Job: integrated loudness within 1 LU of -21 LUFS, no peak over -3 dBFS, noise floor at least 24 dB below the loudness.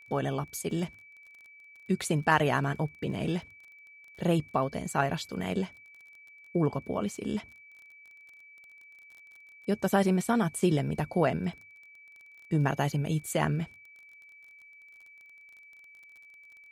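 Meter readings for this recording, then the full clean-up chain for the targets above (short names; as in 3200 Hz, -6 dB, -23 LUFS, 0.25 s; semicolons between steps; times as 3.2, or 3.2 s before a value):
ticks 28/s; steady tone 2300 Hz; tone level -51 dBFS; loudness -30.0 LUFS; peak -10.0 dBFS; loudness target -21.0 LUFS
-> de-click; notch 2300 Hz, Q 30; gain +9 dB; limiter -3 dBFS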